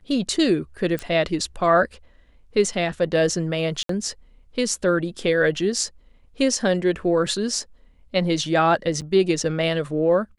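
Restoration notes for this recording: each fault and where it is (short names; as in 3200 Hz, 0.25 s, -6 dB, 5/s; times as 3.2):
0.99 pop -14 dBFS
3.83–3.89 gap 63 ms
9.01–9.02 gap 7.8 ms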